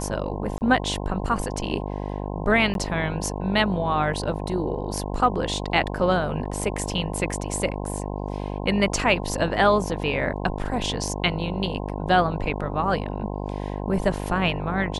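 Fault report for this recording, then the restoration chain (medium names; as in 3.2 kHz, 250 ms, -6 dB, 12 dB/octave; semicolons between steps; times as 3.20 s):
buzz 50 Hz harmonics 21 -30 dBFS
0.58–0.61 s: dropout 29 ms
2.74–2.75 s: dropout 12 ms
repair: de-hum 50 Hz, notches 21; interpolate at 0.58 s, 29 ms; interpolate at 2.74 s, 12 ms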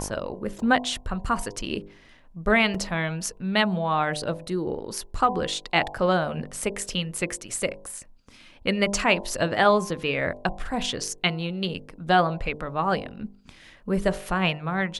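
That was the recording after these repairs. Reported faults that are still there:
nothing left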